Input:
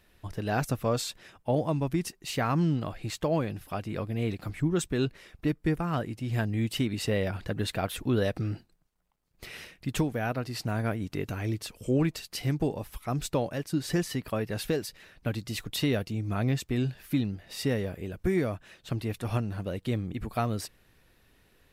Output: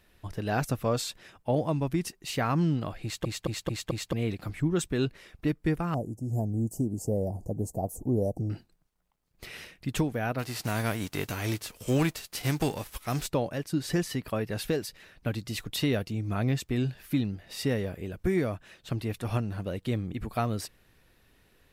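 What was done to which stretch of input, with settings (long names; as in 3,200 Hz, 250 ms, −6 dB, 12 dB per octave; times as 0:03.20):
0:03.03: stutter in place 0.22 s, 5 plays
0:05.94–0:08.50: elliptic band-stop filter 770–6,600 Hz
0:10.38–0:13.26: spectral envelope flattened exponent 0.6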